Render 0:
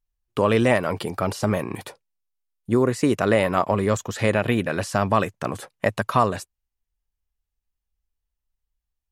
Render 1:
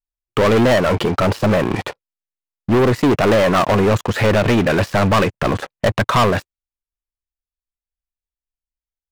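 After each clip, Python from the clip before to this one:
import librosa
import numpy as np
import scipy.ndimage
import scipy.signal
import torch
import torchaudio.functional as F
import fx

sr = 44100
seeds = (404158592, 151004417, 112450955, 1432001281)

y = scipy.signal.sosfilt(scipy.signal.butter(2, 3100.0, 'lowpass', fs=sr, output='sos'), x)
y = fx.leveller(y, sr, passes=5)
y = F.gain(torch.from_numpy(y), -4.0).numpy()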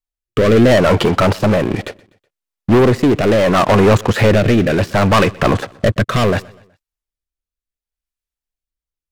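y = fx.rotary(x, sr, hz=0.7)
y = fx.echo_feedback(y, sr, ms=124, feedback_pct=44, wet_db=-23.5)
y = F.gain(torch.from_numpy(y), 5.0).numpy()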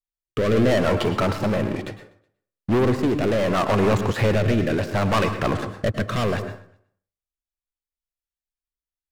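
y = fx.rev_plate(x, sr, seeds[0], rt60_s=0.52, hf_ratio=0.55, predelay_ms=95, drr_db=8.5)
y = F.gain(torch.from_numpy(y), -9.0).numpy()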